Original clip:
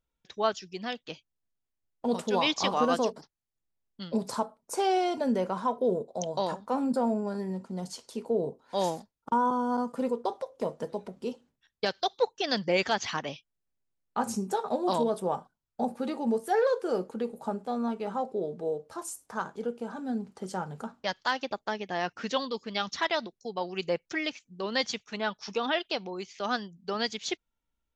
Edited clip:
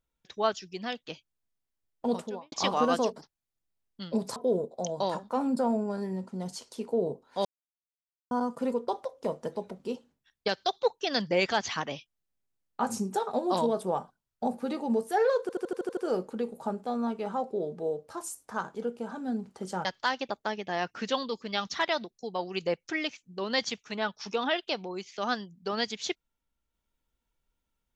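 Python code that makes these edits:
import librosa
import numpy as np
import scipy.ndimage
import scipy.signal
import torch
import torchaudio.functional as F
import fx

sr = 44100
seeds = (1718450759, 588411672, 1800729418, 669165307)

y = fx.studio_fade_out(x, sr, start_s=2.05, length_s=0.47)
y = fx.edit(y, sr, fx.cut(start_s=4.36, length_s=1.37),
    fx.silence(start_s=8.82, length_s=0.86),
    fx.stutter(start_s=16.78, slice_s=0.08, count=8),
    fx.cut(start_s=20.66, length_s=0.41), tone=tone)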